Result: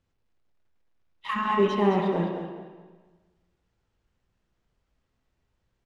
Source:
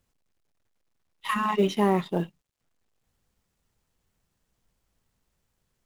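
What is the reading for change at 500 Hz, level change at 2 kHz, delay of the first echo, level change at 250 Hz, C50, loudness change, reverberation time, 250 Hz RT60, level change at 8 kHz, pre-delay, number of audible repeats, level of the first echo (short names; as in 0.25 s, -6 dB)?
+2.0 dB, 0.0 dB, 0.212 s, 0.0 dB, 2.0 dB, +0.5 dB, 1.4 s, 1.4 s, n/a, 8 ms, 1, -8.5 dB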